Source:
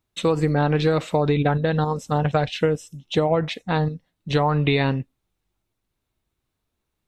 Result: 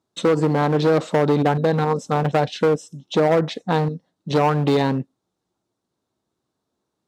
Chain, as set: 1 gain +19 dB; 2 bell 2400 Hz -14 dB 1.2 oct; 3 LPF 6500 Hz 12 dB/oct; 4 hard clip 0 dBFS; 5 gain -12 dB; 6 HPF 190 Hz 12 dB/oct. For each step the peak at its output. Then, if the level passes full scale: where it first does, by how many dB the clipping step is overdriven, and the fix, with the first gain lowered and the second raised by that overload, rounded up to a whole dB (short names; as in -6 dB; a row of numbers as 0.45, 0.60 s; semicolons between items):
+10.5, +9.5, +9.5, 0.0, -12.0, -6.0 dBFS; step 1, 9.5 dB; step 1 +9 dB, step 5 -2 dB